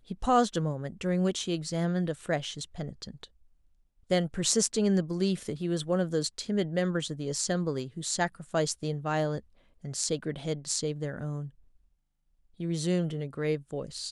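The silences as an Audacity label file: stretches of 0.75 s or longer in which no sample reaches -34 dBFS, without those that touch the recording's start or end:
3.240000	4.110000	silence
11.460000	12.600000	silence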